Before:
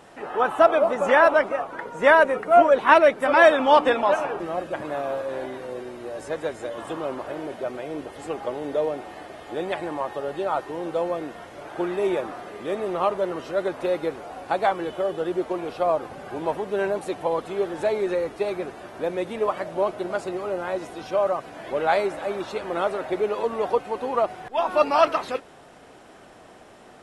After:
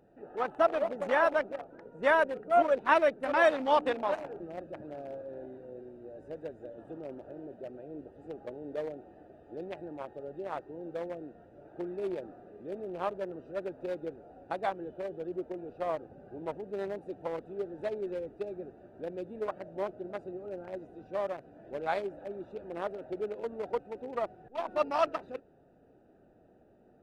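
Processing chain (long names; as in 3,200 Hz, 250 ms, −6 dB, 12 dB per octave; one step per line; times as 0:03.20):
adaptive Wiener filter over 41 samples
level −9 dB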